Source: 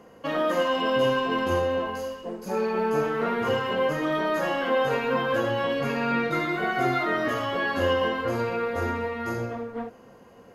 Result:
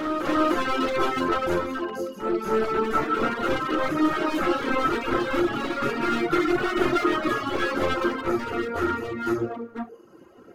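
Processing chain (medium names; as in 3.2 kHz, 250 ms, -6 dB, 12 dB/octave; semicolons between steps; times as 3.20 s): one-sided wavefolder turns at -26.5 dBFS; de-hum 92.68 Hz, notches 8; reverse echo 297 ms -5.5 dB; reverb removal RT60 1.1 s; band-stop 490 Hz, Q 12; small resonant body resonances 340/1300 Hz, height 15 dB, ringing for 35 ms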